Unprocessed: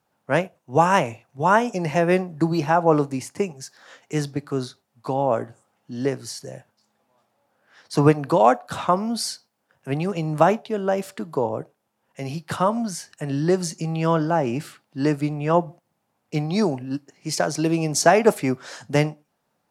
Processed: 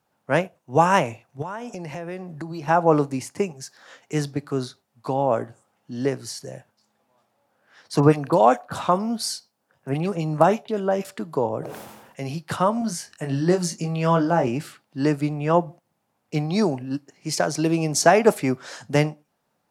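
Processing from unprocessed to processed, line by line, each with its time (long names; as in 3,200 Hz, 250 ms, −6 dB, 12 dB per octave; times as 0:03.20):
0:01.42–0:02.68: downward compressor 4 to 1, threshold −31 dBFS
0:08.00–0:11.05: multiband delay without the direct sound lows, highs 30 ms, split 2,100 Hz
0:11.59–0:12.25: level that may fall only so fast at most 43 dB per second
0:12.79–0:14.48: double-tracking delay 23 ms −5.5 dB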